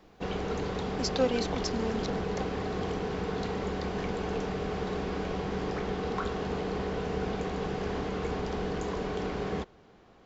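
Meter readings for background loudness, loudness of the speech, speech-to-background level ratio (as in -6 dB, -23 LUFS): -33.5 LUFS, -34.0 LUFS, -0.5 dB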